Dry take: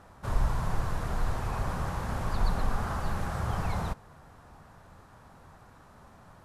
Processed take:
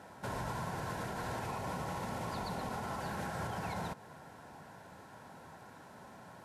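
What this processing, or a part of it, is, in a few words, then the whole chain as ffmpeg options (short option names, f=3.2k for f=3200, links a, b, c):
PA system with an anti-feedback notch: -filter_complex "[0:a]highpass=160,asuperstop=centerf=1200:order=8:qfactor=6.8,alimiter=level_in=9dB:limit=-24dB:level=0:latency=1:release=127,volume=-9dB,asettb=1/sr,asplit=3[a][b][c];[a]atrim=end=1.454[d];[b]atrim=start=1.45:end=3.01,asetpts=PTS-STARTPTS,afade=t=in:d=0.004:c=qsin,afade=t=out:st=1.556:d=0.004:c=qsin,bandreject=f=1.6k:w=8.2[e];[c]atrim=start=3.006[f];[d][e]acrossfade=d=0.004:c1=hsin:c2=qsin[g];[g][f]acrossfade=d=0.004:c1=qsin:c2=hsin,volume=3dB"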